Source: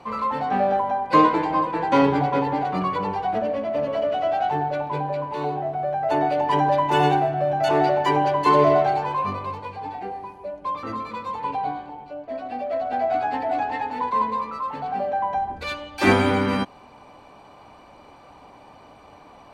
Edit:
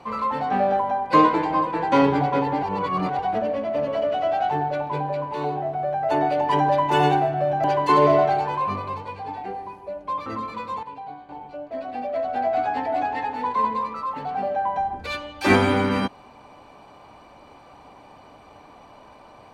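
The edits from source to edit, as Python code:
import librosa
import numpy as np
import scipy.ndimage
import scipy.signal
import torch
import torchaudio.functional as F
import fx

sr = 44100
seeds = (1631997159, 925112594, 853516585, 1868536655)

y = fx.edit(x, sr, fx.reverse_span(start_s=2.63, length_s=0.56),
    fx.cut(start_s=7.64, length_s=0.57),
    fx.clip_gain(start_s=11.4, length_s=0.46, db=-10.5), tone=tone)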